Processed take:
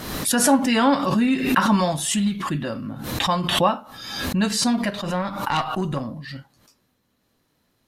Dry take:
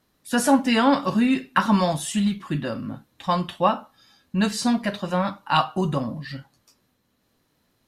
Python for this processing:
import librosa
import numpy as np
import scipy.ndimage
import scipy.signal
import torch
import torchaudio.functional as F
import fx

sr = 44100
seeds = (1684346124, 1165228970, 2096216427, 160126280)

y = fx.tube_stage(x, sr, drive_db=15.0, bias=0.5, at=(4.9, 6.36))
y = fx.pre_swell(y, sr, db_per_s=49.0)